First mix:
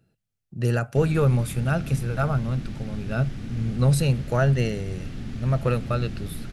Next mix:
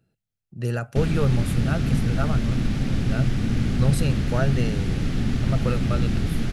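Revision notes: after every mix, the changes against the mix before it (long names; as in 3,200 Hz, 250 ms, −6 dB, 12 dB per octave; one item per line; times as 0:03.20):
speech −3.0 dB
background +10.5 dB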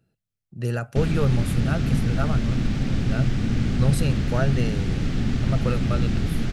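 background: add parametric band 11,000 Hz −13.5 dB 0.23 octaves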